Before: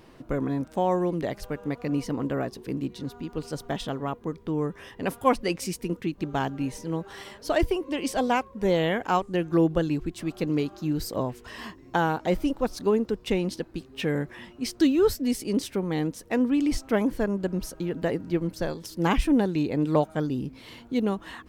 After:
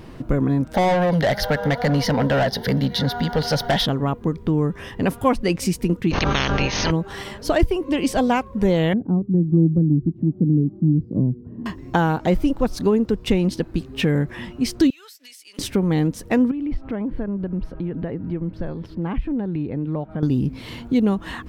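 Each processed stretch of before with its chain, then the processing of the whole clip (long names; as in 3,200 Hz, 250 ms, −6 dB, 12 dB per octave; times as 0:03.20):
0:00.74–0:03.86: phaser with its sweep stopped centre 1,700 Hz, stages 8 + mid-hump overdrive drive 25 dB, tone 6,900 Hz, clips at −16 dBFS
0:06.10–0:06.90: ceiling on every frequency bin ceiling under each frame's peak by 30 dB + linear-phase brick-wall low-pass 6,600 Hz + background raised ahead of every attack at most 26 dB per second
0:08.93–0:11.66: flat-topped band-pass 200 Hz, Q 1 + low-shelf EQ 230 Hz +6.5 dB
0:14.90–0:15.59: Chebyshev high-pass filter 2,500 Hz + downward compressor 8 to 1, threshold −49 dBFS
0:16.51–0:20.23: downward compressor 2.5 to 1, threshold −39 dBFS + high-frequency loss of the air 410 metres
whole clip: bass and treble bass +8 dB, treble −2 dB; downward compressor 2 to 1, threshold −27 dBFS; level +8.5 dB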